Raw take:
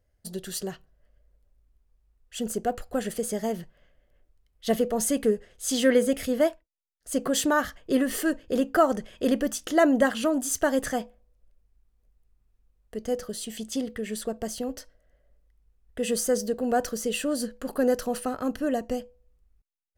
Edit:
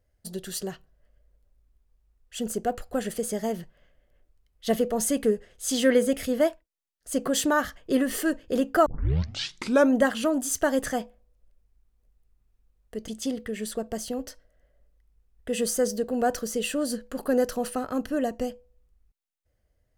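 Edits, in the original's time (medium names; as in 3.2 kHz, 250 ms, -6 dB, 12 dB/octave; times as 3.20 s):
8.86 s: tape start 1.10 s
13.08–13.58 s: delete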